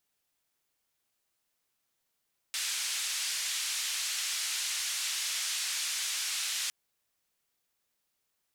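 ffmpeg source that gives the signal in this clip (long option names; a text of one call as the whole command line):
ffmpeg -f lavfi -i "anoisesrc=color=white:duration=4.16:sample_rate=44100:seed=1,highpass=frequency=2100,lowpass=frequency=7800,volume=-22.9dB" out.wav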